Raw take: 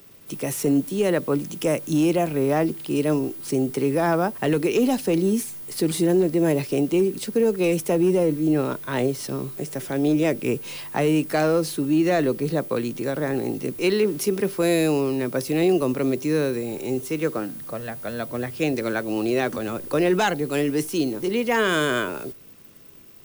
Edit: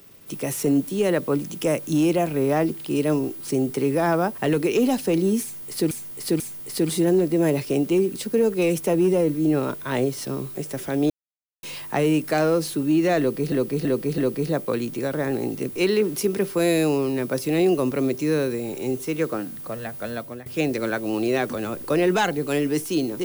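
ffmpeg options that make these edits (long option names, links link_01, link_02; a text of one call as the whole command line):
ffmpeg -i in.wav -filter_complex "[0:a]asplit=9[link_01][link_02][link_03][link_04][link_05][link_06][link_07][link_08][link_09];[link_01]atrim=end=5.912[link_10];[link_02]atrim=start=5.418:end=5.912[link_11];[link_03]atrim=start=5.418:end=10.12,asetpts=PTS-STARTPTS,afade=type=out:start_time=4.698:duration=0.004:curve=hsin[link_12];[link_04]atrim=start=10.12:end=10.65,asetpts=PTS-STARTPTS,volume=0[link_13];[link_05]atrim=start=10.65:end=12.542,asetpts=PTS-STARTPTS,afade=type=in:duration=0.004:curve=hsin[link_14];[link_06]atrim=start=12.208:end=12.542[link_15];[link_07]atrim=start=12.208:end=12.542[link_16];[link_08]atrim=start=12.208:end=18.49,asetpts=PTS-STARTPTS,afade=type=out:start_time=5.932:duration=0.35:silence=0.141254[link_17];[link_09]atrim=start=18.49,asetpts=PTS-STARTPTS,afade=type=in:duration=0.004:curve=hsin:silence=0.141254[link_18];[link_10][link_11]acrossfade=duration=0.004:curve1=hsin:curve2=hsin[link_19];[link_12][link_13][link_14]concat=n=3:v=0:a=1[link_20];[link_19][link_20]acrossfade=duration=0.004:curve1=hsin:curve2=hsin[link_21];[link_21][link_15]acrossfade=duration=0.004:curve1=hsin:curve2=hsin[link_22];[link_22][link_16]acrossfade=duration=0.004:curve1=hsin:curve2=hsin[link_23];[link_17][link_18]concat=n=2:v=0:a=1[link_24];[link_23][link_24]acrossfade=duration=0.004:curve1=hsin:curve2=hsin" out.wav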